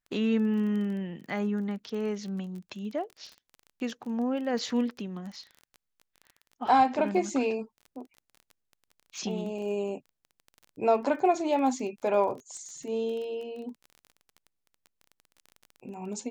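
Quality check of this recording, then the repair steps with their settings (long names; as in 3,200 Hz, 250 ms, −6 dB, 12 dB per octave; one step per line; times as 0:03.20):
surface crackle 20 per second −38 dBFS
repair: click removal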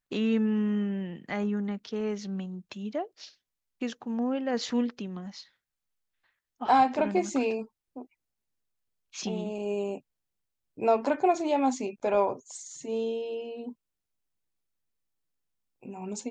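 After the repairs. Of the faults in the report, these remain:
none of them is left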